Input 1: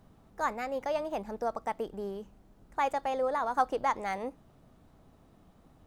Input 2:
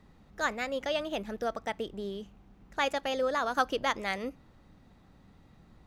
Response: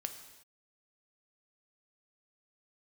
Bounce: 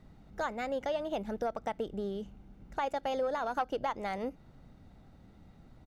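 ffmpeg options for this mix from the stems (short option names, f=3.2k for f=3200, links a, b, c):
-filter_complex "[0:a]adynamicsmooth=sensitivity=0.5:basefreq=570,volume=2dB[a];[1:a]aecho=1:1:1.4:0.33,alimiter=limit=-23dB:level=0:latency=1:release=186,volume=-2.5dB[b];[a][b]amix=inputs=2:normalize=0,acompressor=threshold=-34dB:ratio=2"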